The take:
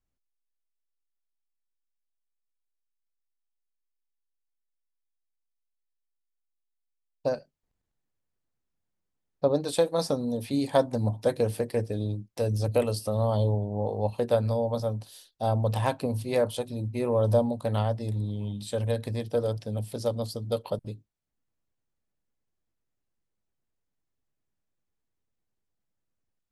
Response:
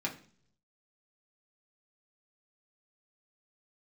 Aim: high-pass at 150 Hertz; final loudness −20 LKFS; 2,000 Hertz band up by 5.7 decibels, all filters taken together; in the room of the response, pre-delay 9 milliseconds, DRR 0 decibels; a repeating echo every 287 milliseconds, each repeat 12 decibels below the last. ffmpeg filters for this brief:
-filter_complex "[0:a]highpass=150,equalizer=frequency=2000:width_type=o:gain=7.5,aecho=1:1:287|574|861:0.251|0.0628|0.0157,asplit=2[link_01][link_02];[1:a]atrim=start_sample=2205,adelay=9[link_03];[link_02][link_03]afir=irnorm=-1:irlink=0,volume=-4dB[link_04];[link_01][link_04]amix=inputs=2:normalize=0,volume=5.5dB"

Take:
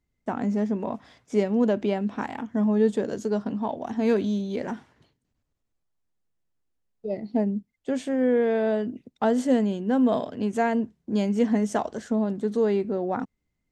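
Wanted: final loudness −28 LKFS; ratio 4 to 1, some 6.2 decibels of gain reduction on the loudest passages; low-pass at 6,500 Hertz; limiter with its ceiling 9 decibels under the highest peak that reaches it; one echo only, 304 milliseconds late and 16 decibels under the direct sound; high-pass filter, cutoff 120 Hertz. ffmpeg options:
ffmpeg -i in.wav -af "highpass=120,lowpass=6500,acompressor=threshold=-24dB:ratio=4,alimiter=limit=-22dB:level=0:latency=1,aecho=1:1:304:0.158,volume=3.5dB" out.wav

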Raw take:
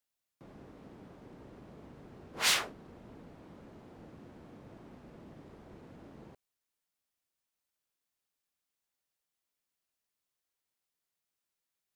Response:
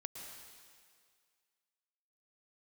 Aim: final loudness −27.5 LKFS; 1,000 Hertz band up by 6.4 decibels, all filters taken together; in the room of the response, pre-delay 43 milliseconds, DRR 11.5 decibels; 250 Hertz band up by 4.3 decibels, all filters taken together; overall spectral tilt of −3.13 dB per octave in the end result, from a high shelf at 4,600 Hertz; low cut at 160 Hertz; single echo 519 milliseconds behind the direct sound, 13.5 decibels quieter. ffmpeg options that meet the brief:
-filter_complex "[0:a]highpass=160,equalizer=frequency=250:width_type=o:gain=6,equalizer=frequency=1000:width_type=o:gain=8,highshelf=frequency=4600:gain=-5,aecho=1:1:519:0.211,asplit=2[link_01][link_02];[1:a]atrim=start_sample=2205,adelay=43[link_03];[link_02][link_03]afir=irnorm=-1:irlink=0,volume=-9dB[link_04];[link_01][link_04]amix=inputs=2:normalize=0,volume=9.5dB"

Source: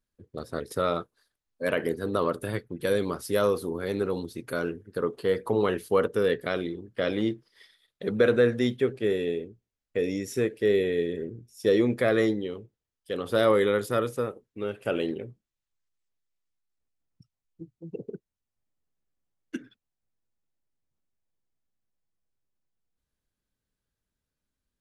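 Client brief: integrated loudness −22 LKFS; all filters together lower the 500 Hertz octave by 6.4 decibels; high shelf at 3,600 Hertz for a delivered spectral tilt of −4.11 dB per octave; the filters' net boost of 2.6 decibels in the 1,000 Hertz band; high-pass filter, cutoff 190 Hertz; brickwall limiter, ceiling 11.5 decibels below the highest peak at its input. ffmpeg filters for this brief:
ffmpeg -i in.wav -af "highpass=190,equalizer=frequency=500:width_type=o:gain=-8.5,equalizer=frequency=1000:width_type=o:gain=6,highshelf=frequency=3600:gain=-5,volume=14.5dB,alimiter=limit=-9dB:level=0:latency=1" out.wav

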